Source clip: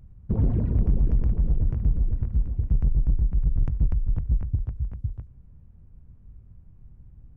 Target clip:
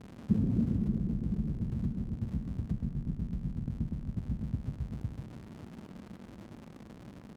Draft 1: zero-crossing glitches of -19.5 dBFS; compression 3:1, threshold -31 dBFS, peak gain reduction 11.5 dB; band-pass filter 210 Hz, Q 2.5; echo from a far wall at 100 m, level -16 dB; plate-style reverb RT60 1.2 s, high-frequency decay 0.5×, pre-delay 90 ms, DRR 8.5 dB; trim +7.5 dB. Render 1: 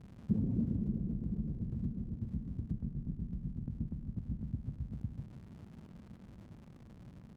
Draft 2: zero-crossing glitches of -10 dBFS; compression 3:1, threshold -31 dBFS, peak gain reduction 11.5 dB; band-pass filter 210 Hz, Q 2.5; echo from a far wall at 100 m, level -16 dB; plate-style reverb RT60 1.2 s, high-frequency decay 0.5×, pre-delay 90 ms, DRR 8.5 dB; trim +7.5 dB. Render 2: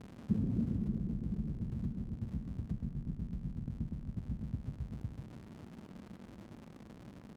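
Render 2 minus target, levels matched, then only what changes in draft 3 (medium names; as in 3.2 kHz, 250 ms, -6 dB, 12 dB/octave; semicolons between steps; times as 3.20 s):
compression: peak gain reduction +4.5 dB
change: compression 3:1, threshold -24 dBFS, peak gain reduction 7 dB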